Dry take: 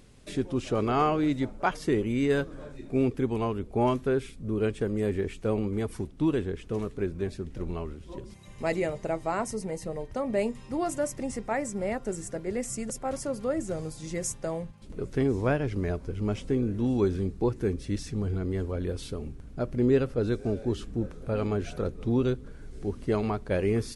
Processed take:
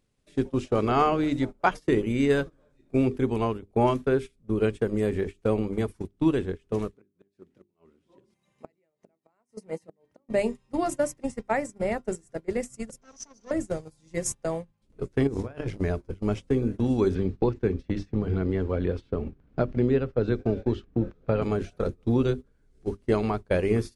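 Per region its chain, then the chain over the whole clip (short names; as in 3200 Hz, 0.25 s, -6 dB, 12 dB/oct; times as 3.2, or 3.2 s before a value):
6.94–10.29 tone controls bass +2 dB, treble -3 dB + flipped gate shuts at -22 dBFS, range -25 dB + HPF 190 Hz
13.01–13.51 minimum comb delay 4.4 ms + synth low-pass 6000 Hz, resonance Q 16 + compressor 2:1, threshold -35 dBFS
15.27–15.79 negative-ratio compressor -31 dBFS + doubler 31 ms -12 dB + core saturation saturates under 170 Hz
17.15–21.42 LPF 3400 Hz + three-band squash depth 70%
whole clip: notches 50/100/150/200/250/300/350/400 Hz; gate -32 dBFS, range -20 dB; transient shaper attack +2 dB, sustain -3 dB; gain +2.5 dB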